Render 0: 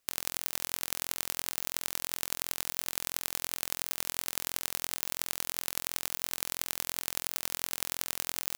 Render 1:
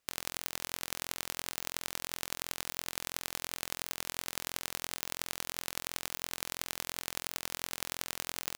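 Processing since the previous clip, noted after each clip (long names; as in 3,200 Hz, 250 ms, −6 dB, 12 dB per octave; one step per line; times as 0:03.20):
high-shelf EQ 7,300 Hz −7.5 dB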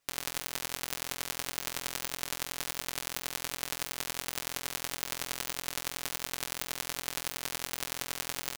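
comb filter 7.1 ms, depth 84%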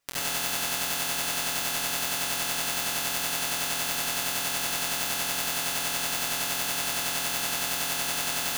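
convolution reverb RT60 0.65 s, pre-delay 63 ms, DRR −8 dB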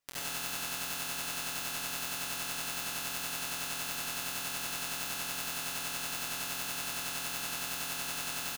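single-tap delay 94 ms −13 dB
level −8 dB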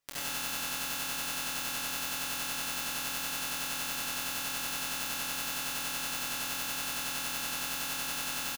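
double-tracking delay 27 ms −7 dB
level +1 dB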